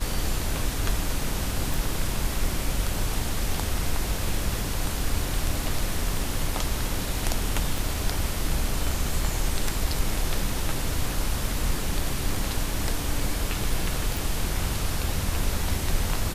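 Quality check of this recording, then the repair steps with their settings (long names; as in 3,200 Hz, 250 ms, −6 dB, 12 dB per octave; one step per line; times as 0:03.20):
0:01.74: click
0:07.78: click
0:14.17: click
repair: click removal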